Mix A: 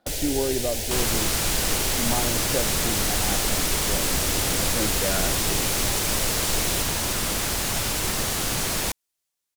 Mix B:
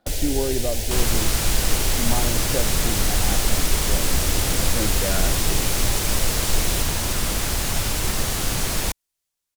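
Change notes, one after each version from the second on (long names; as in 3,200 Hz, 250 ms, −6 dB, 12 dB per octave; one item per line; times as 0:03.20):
master: add low-shelf EQ 90 Hz +10 dB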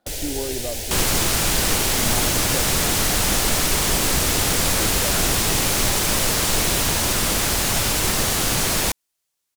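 speech −3.5 dB
second sound +5.0 dB
master: add low-shelf EQ 90 Hz −10 dB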